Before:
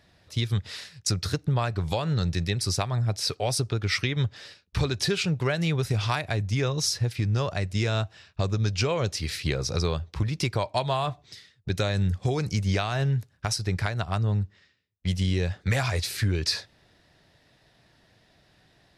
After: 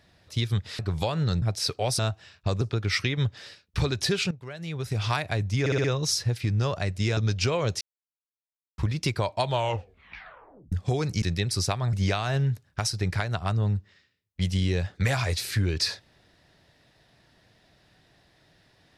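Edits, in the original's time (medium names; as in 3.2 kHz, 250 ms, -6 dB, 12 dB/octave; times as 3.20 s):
0.79–1.69 s: delete
2.32–3.03 s: move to 12.59 s
5.30–6.07 s: fade in quadratic, from -16 dB
6.59 s: stutter 0.06 s, 5 plays
7.92–8.54 s: move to 3.60 s
9.18–10.15 s: mute
10.83 s: tape stop 1.26 s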